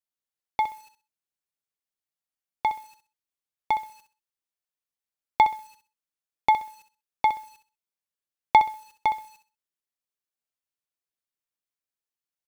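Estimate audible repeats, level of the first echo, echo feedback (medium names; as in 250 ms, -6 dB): 3, -10.0 dB, 24%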